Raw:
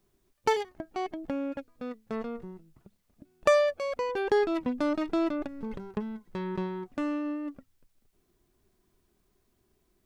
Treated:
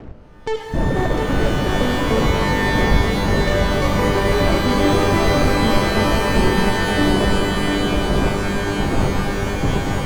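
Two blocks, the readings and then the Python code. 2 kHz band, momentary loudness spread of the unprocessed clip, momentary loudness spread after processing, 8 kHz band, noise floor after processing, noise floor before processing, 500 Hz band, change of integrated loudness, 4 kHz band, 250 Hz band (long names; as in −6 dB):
+18.0 dB, 14 LU, 5 LU, +19.5 dB, −31 dBFS, −73 dBFS, +10.5 dB, +12.5 dB, +21.0 dB, +14.0 dB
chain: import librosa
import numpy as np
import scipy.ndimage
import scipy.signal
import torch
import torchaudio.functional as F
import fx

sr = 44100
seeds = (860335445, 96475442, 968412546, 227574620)

p1 = fx.dmg_wind(x, sr, seeds[0], corner_hz=420.0, level_db=-35.0)
p2 = fx.dereverb_blind(p1, sr, rt60_s=0.73)
p3 = fx.high_shelf(p2, sr, hz=2200.0, db=-10.0)
p4 = fx.rider(p3, sr, range_db=5, speed_s=2.0)
p5 = p3 + (p4 * 10.0 ** (-0.5 / 20.0))
p6 = fx.dereverb_blind(p5, sr, rt60_s=1.7)
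p7 = fx.leveller(p6, sr, passes=5)
p8 = scipy.signal.sosfilt(scipy.signal.butter(4, 8000.0, 'lowpass', fs=sr, output='sos'), p7)
p9 = fx.level_steps(p8, sr, step_db=17)
p10 = fx.low_shelf(p9, sr, hz=85.0, db=11.0)
p11 = p10 + fx.echo_swing(p10, sr, ms=935, ratio=3, feedback_pct=52, wet_db=-4, dry=0)
p12 = fx.rev_shimmer(p11, sr, seeds[1], rt60_s=3.7, semitones=12, shimmer_db=-2, drr_db=3.0)
y = p12 * 10.0 ** (-5.5 / 20.0)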